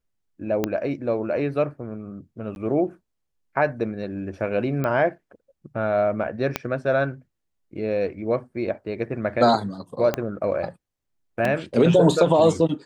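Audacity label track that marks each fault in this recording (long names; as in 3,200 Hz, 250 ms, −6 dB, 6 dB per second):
0.640000	0.640000	click −9 dBFS
2.550000	2.560000	drop-out 11 ms
4.840000	4.840000	click −14 dBFS
6.560000	6.560000	click −7 dBFS
10.140000	10.140000	click −9 dBFS
11.450000	11.450000	drop-out 2.7 ms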